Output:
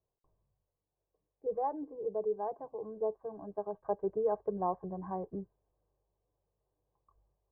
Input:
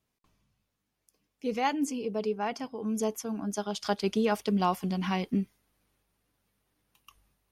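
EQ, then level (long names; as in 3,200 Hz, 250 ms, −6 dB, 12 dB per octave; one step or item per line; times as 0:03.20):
Chebyshev low-pass with heavy ripple 1,600 Hz, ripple 3 dB
phaser with its sweep stopped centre 580 Hz, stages 4
0.0 dB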